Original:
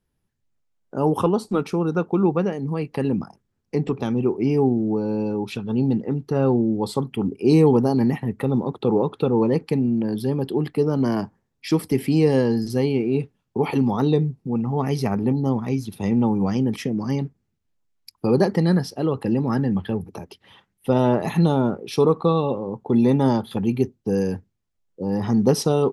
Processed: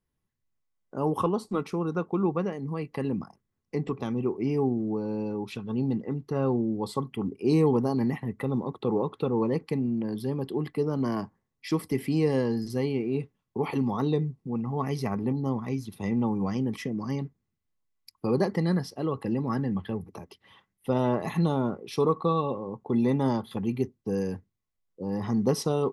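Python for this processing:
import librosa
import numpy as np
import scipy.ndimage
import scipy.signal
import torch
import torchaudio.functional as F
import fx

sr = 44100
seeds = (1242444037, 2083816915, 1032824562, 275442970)

y = fx.small_body(x, sr, hz=(1100.0, 2000.0), ring_ms=45, db=10)
y = y * librosa.db_to_amplitude(-7.0)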